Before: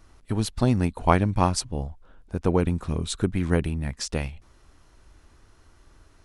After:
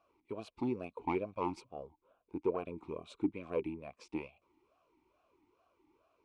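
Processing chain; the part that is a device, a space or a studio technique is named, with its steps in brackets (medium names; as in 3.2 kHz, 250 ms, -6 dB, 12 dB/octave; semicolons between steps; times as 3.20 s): talk box (valve stage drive 14 dB, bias 0.5; talking filter a-u 2.3 Hz); trim +2 dB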